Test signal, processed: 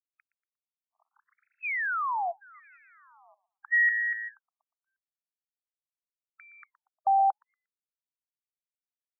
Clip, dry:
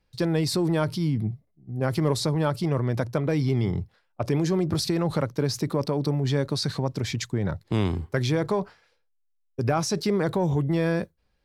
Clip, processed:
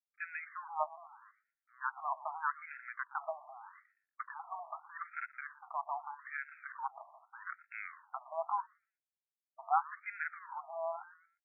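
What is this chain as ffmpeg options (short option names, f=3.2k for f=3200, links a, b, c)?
-filter_complex "[0:a]adynamicsmooth=sensitivity=1:basefreq=6.6k,aeval=exprs='sgn(val(0))*max(abs(val(0))-0.00841,0)':c=same,asuperstop=centerf=3700:order=4:qfactor=1.5,asplit=2[a][b];[b]asplit=3[c][d][e];[c]adelay=118,afreqshift=-110,volume=-17dB[f];[d]adelay=236,afreqshift=-220,volume=-27.2dB[g];[e]adelay=354,afreqshift=-330,volume=-37.3dB[h];[f][g][h]amix=inputs=3:normalize=0[i];[a][i]amix=inputs=2:normalize=0,afftfilt=real='re*between(b*sr/1024,850*pow(1900/850,0.5+0.5*sin(2*PI*0.81*pts/sr))/1.41,850*pow(1900/850,0.5+0.5*sin(2*PI*0.81*pts/sr))*1.41)':imag='im*between(b*sr/1024,850*pow(1900/850,0.5+0.5*sin(2*PI*0.81*pts/sr))/1.41,850*pow(1900/850,0.5+0.5*sin(2*PI*0.81*pts/sr))*1.41)':win_size=1024:overlap=0.75"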